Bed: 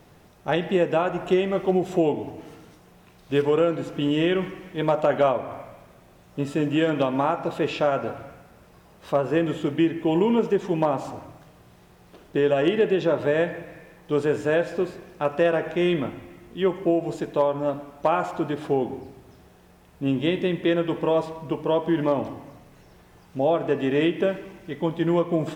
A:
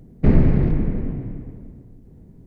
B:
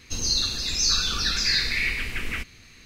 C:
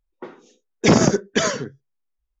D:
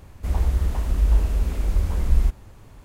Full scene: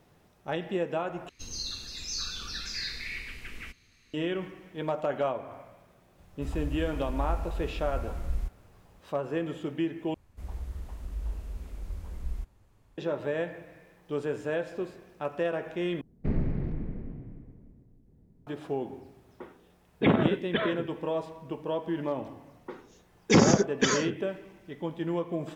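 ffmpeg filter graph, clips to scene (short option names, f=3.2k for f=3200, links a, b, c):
-filter_complex "[4:a]asplit=2[a][b];[3:a]asplit=2[c][d];[0:a]volume=-9dB[e];[c]aresample=8000,aresample=44100[f];[d]asuperstop=centerf=650:order=4:qfactor=5.2[g];[e]asplit=4[h][i][j][k];[h]atrim=end=1.294[l];[2:a]atrim=end=2.85,asetpts=PTS-STARTPTS,volume=-12.5dB[m];[i]atrim=start=4.136:end=10.144[n];[b]atrim=end=2.84,asetpts=PTS-STARTPTS,volume=-16.5dB[o];[j]atrim=start=12.976:end=16.014[p];[1:a]atrim=end=2.46,asetpts=PTS-STARTPTS,volume=-14dB[q];[k]atrim=start=18.466[r];[a]atrim=end=2.84,asetpts=PTS-STARTPTS,volume=-13dB,afade=t=in:d=0.004:c=hsin,afade=t=out:st=2.836:d=0.004:c=hsin,adelay=272538S[s];[f]atrim=end=2.4,asetpts=PTS-STARTPTS,volume=-8.5dB,afade=t=in:d=0.004:c=hsin,afade=t=out:st=2.396:d=0.004:c=hsin,adelay=19180[t];[g]atrim=end=2.4,asetpts=PTS-STARTPTS,volume=-5dB,afade=t=in:d=0.004:c=hsin,afade=t=out:st=2.396:d=0.004:c=hsin,adelay=22460[u];[l][m]acrossfade=d=0.004:c1=hsin:c2=hsin[v];[v][n]acrossfade=d=0.004:c1=hsin:c2=hsin[w];[w][o]acrossfade=d=0.004:c1=hsin:c2=hsin[x];[x][p]acrossfade=d=0.004:c1=hsin:c2=hsin[y];[y][q]acrossfade=d=0.004:c1=hsin:c2=hsin[z];[z][r]acrossfade=d=0.004:c1=hsin:c2=hsin[aa];[aa][s][t][u]amix=inputs=4:normalize=0"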